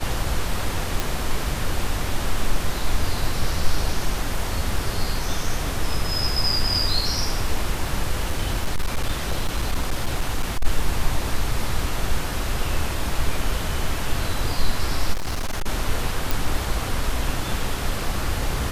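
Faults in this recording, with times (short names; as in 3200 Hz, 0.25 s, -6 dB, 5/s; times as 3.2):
1 pop
8.17–10.66 clipped -16.5 dBFS
15.13–15.67 clipped -21 dBFS
16.31 pop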